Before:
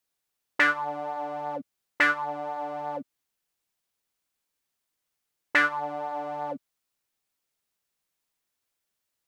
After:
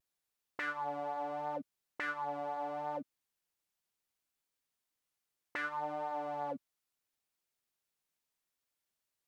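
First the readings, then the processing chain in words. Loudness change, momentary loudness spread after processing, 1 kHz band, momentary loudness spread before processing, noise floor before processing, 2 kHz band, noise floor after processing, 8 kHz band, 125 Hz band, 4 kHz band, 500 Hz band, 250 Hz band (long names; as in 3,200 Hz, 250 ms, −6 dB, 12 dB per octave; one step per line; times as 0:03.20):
−11.5 dB, 7 LU, −7.5 dB, 13 LU, −83 dBFS, −16.0 dB, below −85 dBFS, below −15 dB, −6.5 dB, −16.0 dB, −6.5 dB, −9.0 dB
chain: downward compressor 2.5 to 1, threshold −26 dBFS, peak gain reduction 7 dB
brickwall limiter −22.5 dBFS, peak gain reduction 9.5 dB
pitch vibrato 0.72 Hz 31 cents
level −5.5 dB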